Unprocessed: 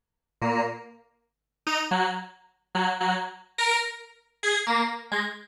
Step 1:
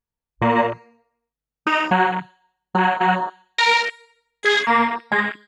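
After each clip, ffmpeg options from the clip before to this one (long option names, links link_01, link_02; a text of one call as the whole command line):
ffmpeg -i in.wav -filter_complex "[0:a]afwtdn=0.0316,asplit=2[link_01][link_02];[link_02]acompressor=threshold=-32dB:ratio=6,volume=1dB[link_03];[link_01][link_03]amix=inputs=2:normalize=0,volume=5dB" out.wav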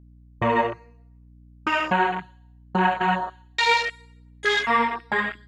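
ffmpeg -i in.wav -af "aeval=exprs='val(0)+0.00447*(sin(2*PI*60*n/s)+sin(2*PI*2*60*n/s)/2+sin(2*PI*3*60*n/s)/3+sin(2*PI*4*60*n/s)/4+sin(2*PI*5*60*n/s)/5)':channel_layout=same,aphaser=in_gain=1:out_gain=1:delay=2.7:decay=0.27:speed=0.7:type=triangular,volume=-4dB" out.wav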